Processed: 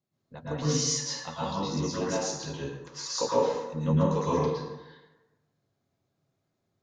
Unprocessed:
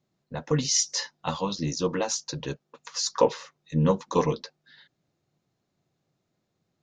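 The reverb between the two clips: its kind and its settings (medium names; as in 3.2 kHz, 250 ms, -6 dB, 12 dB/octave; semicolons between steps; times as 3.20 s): plate-style reverb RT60 1.1 s, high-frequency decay 0.55×, pre-delay 100 ms, DRR -8 dB; trim -10.5 dB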